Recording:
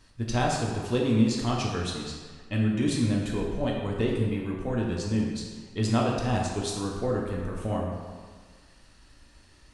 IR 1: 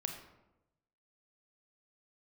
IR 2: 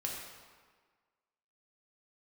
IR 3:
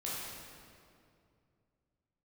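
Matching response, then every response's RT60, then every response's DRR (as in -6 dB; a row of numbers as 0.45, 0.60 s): 2; 0.95, 1.6, 2.4 s; 3.5, -2.5, -7.5 dB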